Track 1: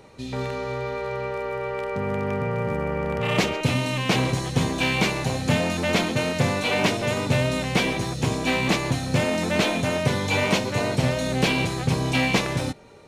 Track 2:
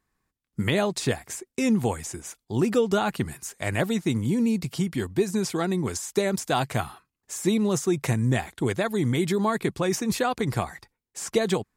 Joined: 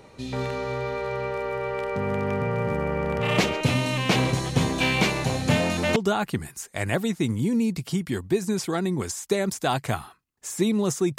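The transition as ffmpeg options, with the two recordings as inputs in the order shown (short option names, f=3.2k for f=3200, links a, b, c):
-filter_complex "[0:a]apad=whole_dur=11.18,atrim=end=11.18,atrim=end=5.962[a];[1:a]atrim=start=2.818:end=8.04[b];[a][b]acrossfade=d=0.004:c1=hsin:c2=hsin"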